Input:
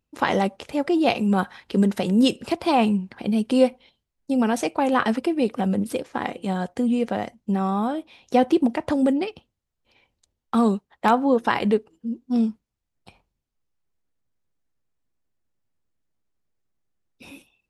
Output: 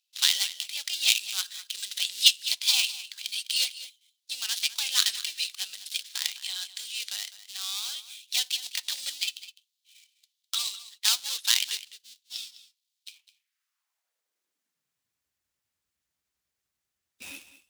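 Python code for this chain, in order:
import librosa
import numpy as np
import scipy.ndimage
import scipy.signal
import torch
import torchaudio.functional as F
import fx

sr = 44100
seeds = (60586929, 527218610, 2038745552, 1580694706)

p1 = fx.dead_time(x, sr, dead_ms=0.083)
p2 = fx.filter_sweep_highpass(p1, sr, from_hz=3700.0, to_hz=62.0, start_s=13.12, end_s=15.34, q=2.4)
p3 = fx.tilt_shelf(p2, sr, db=-9.5, hz=920.0)
p4 = p3 + fx.echo_single(p3, sr, ms=205, db=-15.5, dry=0)
y = F.gain(torch.from_numpy(p4), -1.5).numpy()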